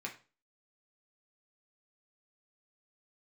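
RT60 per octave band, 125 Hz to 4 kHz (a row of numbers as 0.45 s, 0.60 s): 0.40 s, 0.40 s, 0.35 s, 0.35 s, 0.30 s, 0.30 s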